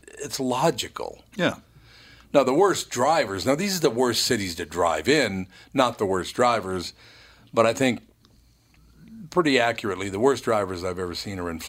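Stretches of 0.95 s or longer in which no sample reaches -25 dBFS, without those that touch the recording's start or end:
7.94–9.32

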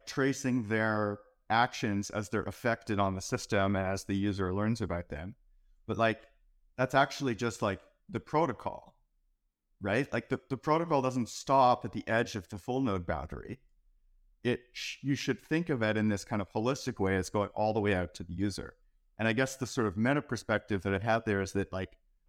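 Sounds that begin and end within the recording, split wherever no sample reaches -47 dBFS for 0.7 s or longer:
9.81–13.55

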